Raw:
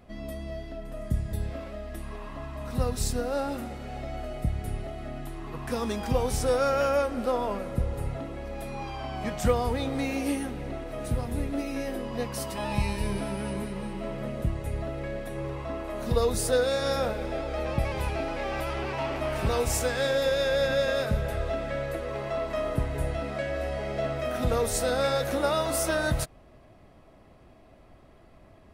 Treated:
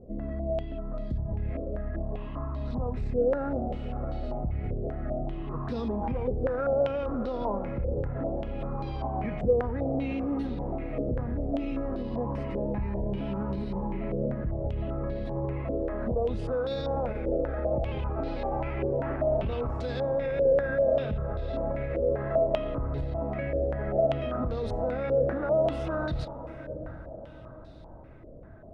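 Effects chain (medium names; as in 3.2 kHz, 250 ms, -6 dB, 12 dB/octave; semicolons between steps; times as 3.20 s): hard clipper -18.5 dBFS, distortion -23 dB; tilt shelf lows +9 dB, about 810 Hz; on a send: echo that smears into a reverb 748 ms, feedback 45%, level -15 dB; on the sum: peak limiter -20 dBFS, peak gain reduction 10.5 dB; step-sequenced low-pass 5.1 Hz 500–4100 Hz; trim -4 dB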